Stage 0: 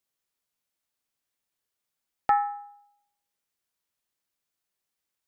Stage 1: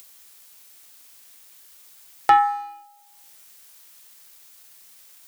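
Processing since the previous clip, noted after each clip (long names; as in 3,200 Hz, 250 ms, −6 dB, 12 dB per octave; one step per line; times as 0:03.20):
spectral tilt +2.5 dB per octave
in parallel at −1 dB: upward compression, threshold −26 dBFS
on the sum: leveller curve on the samples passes 1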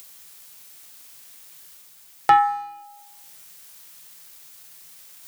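parametric band 150 Hz +12.5 dB 0.26 octaves
reversed playback
upward compression, threshold −39 dBFS
reversed playback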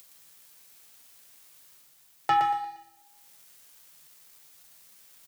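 leveller curve on the samples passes 1
flanger 0.48 Hz, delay 5.3 ms, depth 7 ms, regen +67%
on a send: repeating echo 117 ms, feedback 35%, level −6 dB
on the sum: level −6 dB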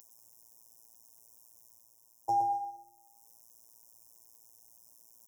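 in parallel at −5.5 dB: hard clipping −29.5 dBFS, distortion −6 dB
on the sum: phases set to zero 115 Hz
linear-phase brick-wall band-stop 1,100–5,100 Hz
level −5.5 dB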